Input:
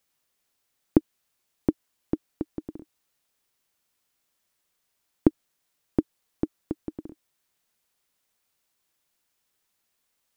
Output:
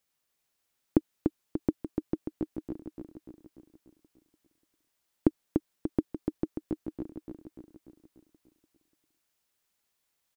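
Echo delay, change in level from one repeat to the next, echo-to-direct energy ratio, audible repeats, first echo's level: 0.293 s, -5.5 dB, -3.0 dB, 6, -4.5 dB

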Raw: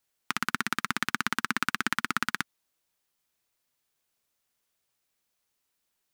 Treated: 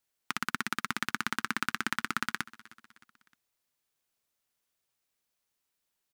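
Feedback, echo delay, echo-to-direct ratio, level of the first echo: 47%, 0.309 s, -19.5 dB, -20.5 dB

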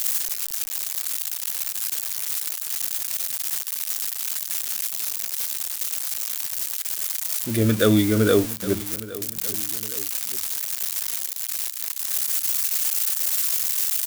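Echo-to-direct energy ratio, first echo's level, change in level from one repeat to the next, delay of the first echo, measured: -16.0 dB, -17.0 dB, -6.0 dB, 0.815 s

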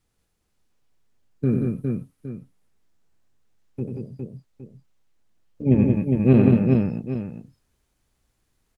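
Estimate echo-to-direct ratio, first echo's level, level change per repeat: 0.5 dB, -6.5 dB, no steady repeat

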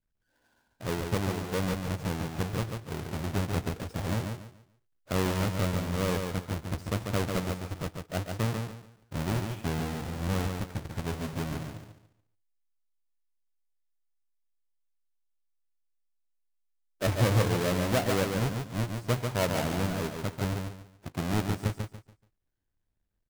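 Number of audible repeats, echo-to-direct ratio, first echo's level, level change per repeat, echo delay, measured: 3, -4.5 dB, -5.0 dB, -11.0 dB, 0.143 s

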